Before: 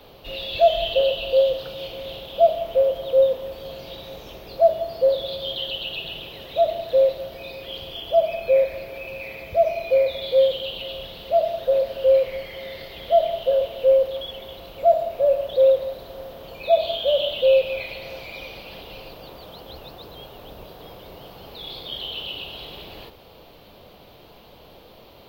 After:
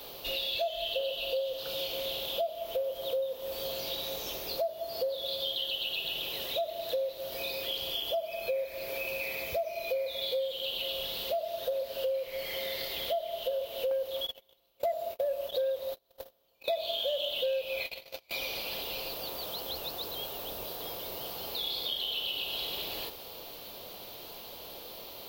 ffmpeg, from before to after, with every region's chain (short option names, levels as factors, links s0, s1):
-filter_complex "[0:a]asettb=1/sr,asplit=3[s0][s1][s2];[s0]atrim=end=13.914[s3];[s1]atrim=start=13.91:end=18.31,asetpts=PTS-STARTPTS,afade=t=in:d=0.004:c=qsin,afade=t=out:st=4.396:d=0.004:c=qsin,acontrast=36,agate=range=0.0112:threshold=0.0398:ratio=16:release=100:detection=peak[s4];[s2]atrim=start=18.306[s5];[s3][s4]acrossfade=d=0.004:c1=hsin:c2=qsin[s6];[s6][s5]acrossfade=d=0.004:c1=qsin:c2=hsin,bass=f=250:g=-8,treble=f=4000:g=14,acompressor=threshold=0.0282:ratio=6"